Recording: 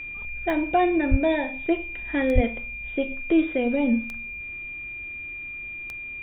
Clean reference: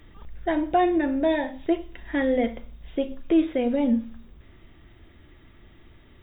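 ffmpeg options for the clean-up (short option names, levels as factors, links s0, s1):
-filter_complex "[0:a]adeclick=t=4,bandreject=f=2400:w=30,asplit=3[s0][s1][s2];[s0]afade=t=out:st=1.1:d=0.02[s3];[s1]highpass=f=140:w=0.5412,highpass=f=140:w=1.3066,afade=t=in:st=1.1:d=0.02,afade=t=out:st=1.22:d=0.02[s4];[s2]afade=t=in:st=1.22:d=0.02[s5];[s3][s4][s5]amix=inputs=3:normalize=0,asplit=3[s6][s7][s8];[s6]afade=t=out:st=2.34:d=0.02[s9];[s7]highpass=f=140:w=0.5412,highpass=f=140:w=1.3066,afade=t=in:st=2.34:d=0.02,afade=t=out:st=2.46:d=0.02[s10];[s8]afade=t=in:st=2.46:d=0.02[s11];[s9][s10][s11]amix=inputs=3:normalize=0"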